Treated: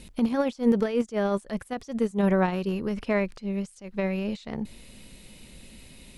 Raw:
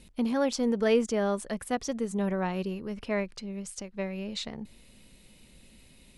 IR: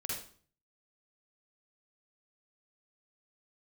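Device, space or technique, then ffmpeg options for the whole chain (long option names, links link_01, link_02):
de-esser from a sidechain: -filter_complex "[0:a]asplit=2[link_01][link_02];[link_02]highpass=frequency=4200:width=0.5412,highpass=frequency=4200:width=1.3066,apad=whole_len=272243[link_03];[link_01][link_03]sidechaincompress=threshold=-56dB:ratio=10:attack=0.88:release=57,volume=8dB"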